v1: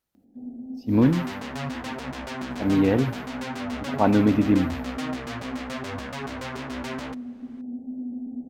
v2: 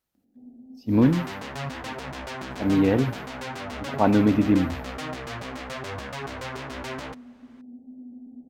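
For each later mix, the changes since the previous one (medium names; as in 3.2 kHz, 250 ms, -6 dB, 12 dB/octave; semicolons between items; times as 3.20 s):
first sound -9.5 dB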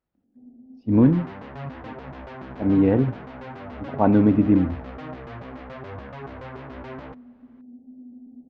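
speech +3.5 dB; master: add tape spacing loss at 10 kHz 41 dB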